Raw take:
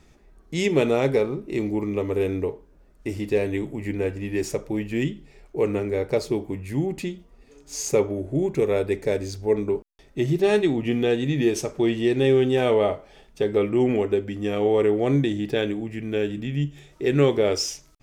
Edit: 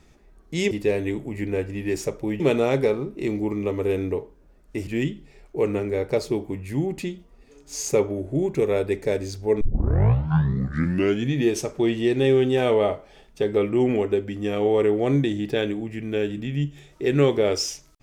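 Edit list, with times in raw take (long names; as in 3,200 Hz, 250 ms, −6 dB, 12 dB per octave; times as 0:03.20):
0:03.18–0:04.87: move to 0:00.71
0:09.61: tape start 1.76 s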